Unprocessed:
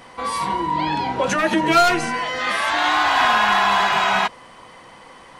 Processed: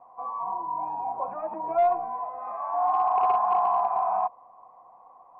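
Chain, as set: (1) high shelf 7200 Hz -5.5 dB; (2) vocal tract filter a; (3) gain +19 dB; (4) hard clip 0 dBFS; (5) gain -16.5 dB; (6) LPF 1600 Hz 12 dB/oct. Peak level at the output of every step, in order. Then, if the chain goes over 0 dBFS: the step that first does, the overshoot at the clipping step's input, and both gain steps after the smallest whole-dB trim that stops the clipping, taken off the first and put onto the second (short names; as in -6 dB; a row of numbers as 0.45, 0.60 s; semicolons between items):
-6.5, -13.5, +5.5, 0.0, -16.5, -16.0 dBFS; step 3, 5.5 dB; step 3 +13 dB, step 5 -10.5 dB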